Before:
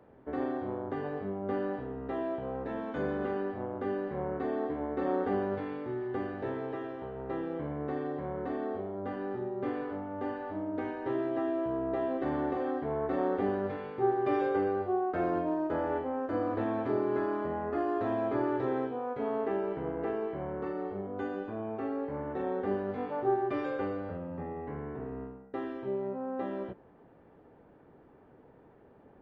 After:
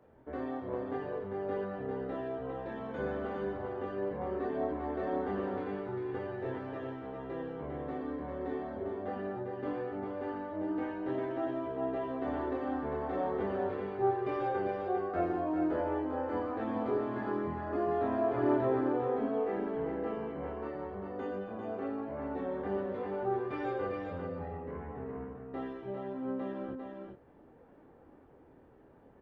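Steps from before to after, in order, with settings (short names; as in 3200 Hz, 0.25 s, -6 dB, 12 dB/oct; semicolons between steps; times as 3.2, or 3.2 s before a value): chorus voices 6, 0.45 Hz, delay 24 ms, depth 2.2 ms; echo 0.399 s -5 dB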